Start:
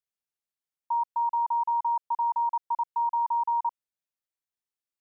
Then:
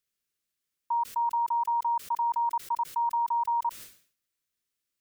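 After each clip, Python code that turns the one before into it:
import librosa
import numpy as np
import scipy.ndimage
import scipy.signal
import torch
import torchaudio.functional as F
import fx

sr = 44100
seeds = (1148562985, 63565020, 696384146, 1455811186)

y = fx.peak_eq(x, sr, hz=810.0, db=-13.5, octaves=0.7)
y = fx.sustainer(y, sr, db_per_s=120.0)
y = F.gain(torch.from_numpy(y), 8.5).numpy()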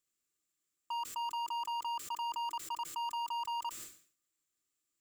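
y = fx.peak_eq(x, sr, hz=7400.0, db=13.5, octaves=0.21)
y = np.clip(y, -10.0 ** (-32.0 / 20.0), 10.0 ** (-32.0 / 20.0))
y = fx.small_body(y, sr, hz=(320.0, 1200.0), ring_ms=45, db=10)
y = F.gain(torch.from_numpy(y), -3.5).numpy()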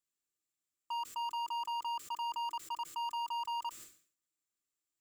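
y = fx.upward_expand(x, sr, threshold_db=-48.0, expansion=1.5)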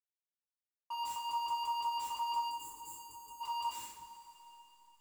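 y = fx.delta_hold(x, sr, step_db=-58.5)
y = fx.spec_box(y, sr, start_s=2.48, length_s=0.93, low_hz=510.0, high_hz=6500.0, gain_db=-18)
y = fx.rev_double_slope(y, sr, seeds[0], early_s=0.43, late_s=4.0, knee_db=-18, drr_db=-6.0)
y = F.gain(torch.from_numpy(y), -4.0).numpy()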